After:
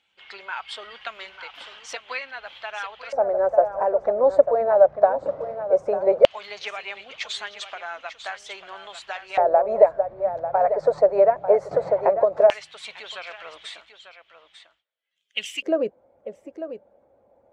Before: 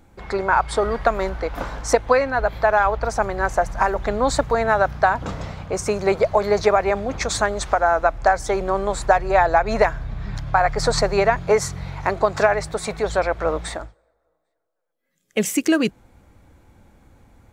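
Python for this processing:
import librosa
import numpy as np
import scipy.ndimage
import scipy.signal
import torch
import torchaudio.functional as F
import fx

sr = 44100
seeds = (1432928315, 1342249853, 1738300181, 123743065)

y = fx.spec_quant(x, sr, step_db=15)
y = y + 10.0 ** (-11.0 / 20.0) * np.pad(y, (int(895 * sr / 1000.0), 0))[:len(y)]
y = fx.filter_lfo_bandpass(y, sr, shape='square', hz=0.16, low_hz=570.0, high_hz=3000.0, q=6.5)
y = fx.band_squash(y, sr, depth_pct=100, at=(11.71, 12.32))
y = F.gain(torch.from_numpy(y), 9.0).numpy()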